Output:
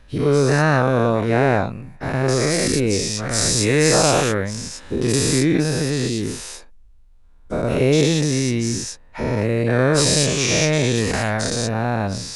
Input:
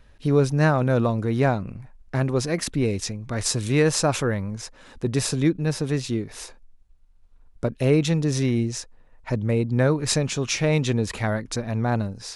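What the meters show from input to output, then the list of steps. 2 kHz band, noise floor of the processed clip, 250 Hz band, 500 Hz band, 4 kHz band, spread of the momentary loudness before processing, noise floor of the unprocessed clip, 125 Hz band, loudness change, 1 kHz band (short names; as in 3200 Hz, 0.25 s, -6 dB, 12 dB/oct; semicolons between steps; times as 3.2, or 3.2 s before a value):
+7.5 dB, -46 dBFS, +3.5 dB, +5.5 dB, +8.5 dB, 10 LU, -53 dBFS, +2.5 dB, +5.0 dB, +6.5 dB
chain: spectral dilation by 0.24 s; gain -1 dB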